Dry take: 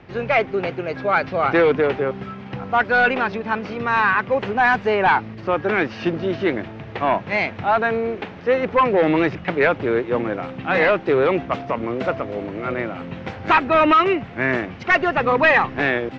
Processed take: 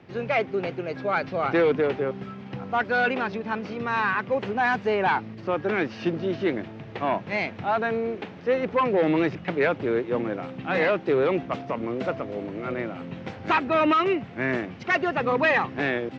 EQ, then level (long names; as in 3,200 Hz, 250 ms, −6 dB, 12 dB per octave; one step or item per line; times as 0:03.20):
high-pass filter 110 Hz 12 dB per octave
tilt shelving filter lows +4.5 dB, about 760 Hz
high-shelf EQ 2,600 Hz +9.5 dB
−7.0 dB